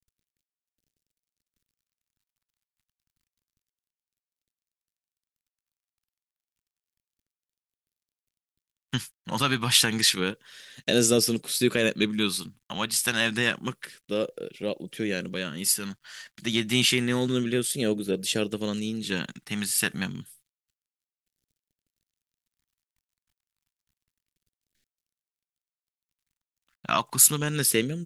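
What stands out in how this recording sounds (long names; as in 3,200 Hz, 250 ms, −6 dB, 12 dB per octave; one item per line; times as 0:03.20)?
a quantiser's noise floor 12 bits, dither none
phaser sweep stages 2, 0.29 Hz, lowest notch 460–1,000 Hz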